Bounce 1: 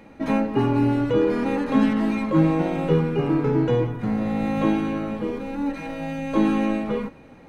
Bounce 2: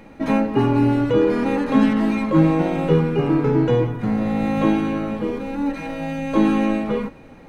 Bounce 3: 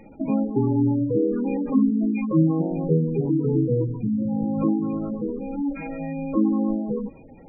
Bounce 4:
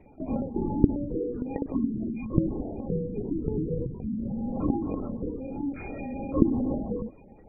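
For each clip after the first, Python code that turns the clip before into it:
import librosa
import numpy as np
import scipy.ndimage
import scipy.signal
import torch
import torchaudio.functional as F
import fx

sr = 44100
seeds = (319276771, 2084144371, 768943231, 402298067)

y1 = fx.dmg_noise_colour(x, sr, seeds[0], colour='brown', level_db=-57.0)
y1 = y1 * 10.0 ** (3.0 / 20.0)
y2 = fx.spec_gate(y1, sr, threshold_db=-15, keep='strong')
y2 = fx.dynamic_eq(y2, sr, hz=780.0, q=1.0, threshold_db=-33.0, ratio=4.0, max_db=-7)
y2 = y2 * 10.0 ** (-2.0 / 20.0)
y3 = fx.rider(y2, sr, range_db=5, speed_s=2.0)
y3 = fx.lpc_vocoder(y3, sr, seeds[1], excitation='whisper', order=16)
y3 = y3 * 10.0 ** (-8.0 / 20.0)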